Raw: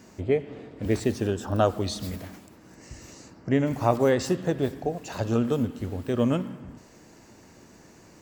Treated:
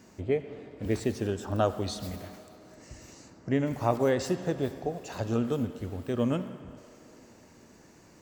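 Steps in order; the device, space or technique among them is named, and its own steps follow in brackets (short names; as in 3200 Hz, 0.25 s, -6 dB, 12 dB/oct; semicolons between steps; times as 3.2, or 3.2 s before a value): filtered reverb send (on a send: HPF 390 Hz 12 dB/oct + LPF 8600 Hz + reverb RT60 3.5 s, pre-delay 72 ms, DRR 14.5 dB); on the sum: gain -4 dB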